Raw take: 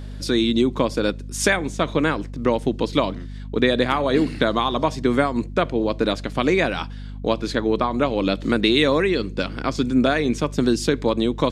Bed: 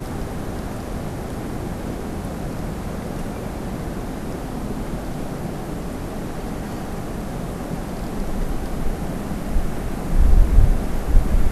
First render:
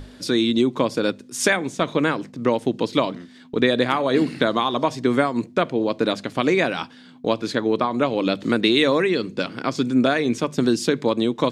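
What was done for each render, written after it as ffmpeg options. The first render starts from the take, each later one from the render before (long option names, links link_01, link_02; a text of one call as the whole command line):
ffmpeg -i in.wav -af "bandreject=frequency=50:width_type=h:width=6,bandreject=frequency=100:width_type=h:width=6,bandreject=frequency=150:width_type=h:width=6,bandreject=frequency=200:width_type=h:width=6" out.wav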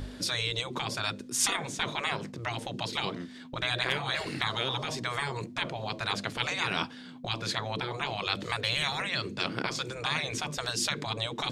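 ffmpeg -i in.wav -af "afftfilt=real='re*lt(hypot(re,im),0.178)':imag='im*lt(hypot(re,im),0.178)':win_size=1024:overlap=0.75,lowshelf=frequency=86:gain=5" out.wav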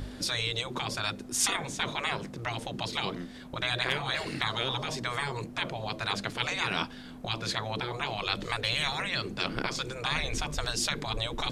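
ffmpeg -i in.wav -i bed.wav -filter_complex "[1:a]volume=-24.5dB[link_01];[0:a][link_01]amix=inputs=2:normalize=0" out.wav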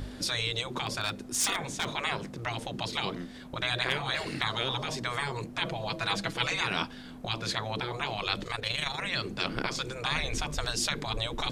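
ffmpeg -i in.wav -filter_complex "[0:a]asettb=1/sr,asplit=3[link_01][link_02][link_03];[link_01]atrim=end=0.764[link_04];[link_02]atrim=start=0.76:end=1.91,asetpts=PTS-STARTPTS,afade=type=in:duration=0.004:curve=qsin,afade=type=out:start_time=1.146:duration=0.004:curve=qsin,aeval=exprs='0.0944*(abs(mod(val(0)/0.0944+3,4)-2)-1)':channel_layout=same[link_05];[link_03]atrim=start=1.906[link_06];[link_04][link_05]acrossfade=duration=0.004:curve1=hsin:curve2=qsin[link_07];[link_07][link_06]acrossfade=duration=0.004:curve1=qsin:curve2=hsin,asettb=1/sr,asplit=3[link_08][link_09][link_10];[link_08]atrim=end=5.614[link_11];[link_09]atrim=start=5.61:end=6.61,asetpts=PTS-STARTPTS,afade=type=in:duration=0.004:curve=qsin,afade=type=out:start_time=0.996:duration=0.004:curve=qsin,aecho=1:1:6.1:0.65,atrim=end_sample=44100[link_12];[link_10]atrim=start=6.606[link_13];[link_11][link_12]acrossfade=duration=0.004:curve1=hsin:curve2=qsin[link_14];[link_14][link_13]acrossfade=duration=0.004:curve1=qsin:curve2=hsin,asettb=1/sr,asplit=3[link_15][link_16][link_17];[link_15]atrim=end=8.434[link_18];[link_16]atrim=start=8.43:end=9.04,asetpts=PTS-STARTPTS,afade=type=in:duration=0.004:curve=qsin,afade=type=out:start_time=0.606:duration=0.004:curve=qsin,tremolo=f=25:d=0.571[link_19];[link_17]atrim=start=9.036[link_20];[link_18][link_19]acrossfade=duration=0.004:curve1=hsin:curve2=qsin[link_21];[link_21][link_20]acrossfade=duration=0.004:curve1=qsin:curve2=hsin" out.wav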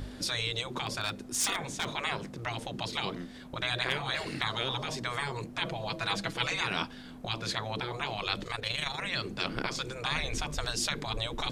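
ffmpeg -i in.wav -af "volume=-1.5dB" out.wav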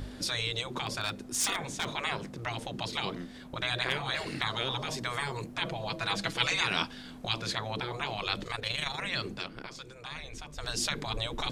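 ffmpeg -i in.wav -filter_complex "[0:a]asettb=1/sr,asplit=3[link_01][link_02][link_03];[link_01]atrim=end=4.854[link_04];[link_02]atrim=start=4.85:end=5.54,asetpts=PTS-STARTPTS,afade=type=in:duration=0.004:curve=qsin,afade=type=out:start_time=0.686:duration=0.004:curve=qsin,highshelf=frequency=11000:gain=7[link_05];[link_03]atrim=start=5.536[link_06];[link_04][link_05]acrossfade=duration=0.004:curve1=hsin:curve2=qsin[link_07];[link_07][link_06]acrossfade=duration=0.004:curve1=qsin:curve2=hsin,asettb=1/sr,asplit=3[link_08][link_09][link_10];[link_08]atrim=end=6.194[link_11];[link_09]atrim=start=6.19:end=7.42,asetpts=PTS-STARTPTS,afade=type=in:duration=0.004:curve=qsin,afade=type=out:start_time=1.226:duration=0.004:curve=qsin,equalizer=frequency=5500:width=0.36:gain=4.5[link_12];[link_10]atrim=start=7.416[link_13];[link_11][link_12]acrossfade=duration=0.004:curve1=hsin:curve2=qsin[link_14];[link_14][link_13]acrossfade=duration=0.004:curve1=qsin:curve2=hsin,asplit=3[link_15][link_16][link_17];[link_15]atrim=end=9.49,asetpts=PTS-STARTPTS,afade=type=out:start_time=9.3:duration=0.19:silence=0.316228[link_18];[link_16]atrim=start=9.49:end=10.55,asetpts=PTS-STARTPTS,volume=-10dB[link_19];[link_17]atrim=start=10.55,asetpts=PTS-STARTPTS,afade=type=in:duration=0.19:silence=0.316228[link_20];[link_18][link_19][link_20]concat=n=3:v=0:a=1" out.wav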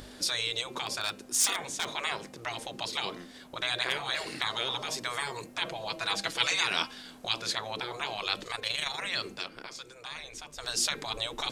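ffmpeg -i in.wav -af "bass=frequency=250:gain=-11,treble=frequency=4000:gain=5,bandreject=frequency=265.3:width_type=h:width=4,bandreject=frequency=530.6:width_type=h:width=4,bandreject=frequency=795.9:width_type=h:width=4,bandreject=frequency=1061.2:width_type=h:width=4,bandreject=frequency=1326.5:width_type=h:width=4,bandreject=frequency=1591.8:width_type=h:width=4,bandreject=frequency=1857.1:width_type=h:width=4,bandreject=frequency=2122.4:width_type=h:width=4,bandreject=frequency=2387.7:width_type=h:width=4,bandreject=frequency=2653:width_type=h:width=4,bandreject=frequency=2918.3:width_type=h:width=4" out.wav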